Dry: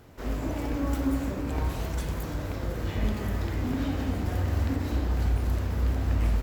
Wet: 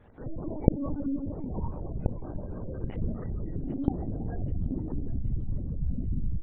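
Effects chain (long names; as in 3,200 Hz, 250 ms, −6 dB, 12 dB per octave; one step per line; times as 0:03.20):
hum removal 129 Hz, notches 27
bit reduction 9 bits
gate on every frequency bin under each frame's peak −20 dB strong
feedback echo with a high-pass in the loop 782 ms, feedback 57%, high-pass 180 Hz, level −16.5 dB
linear-prediction vocoder at 8 kHz pitch kept
level −3.5 dB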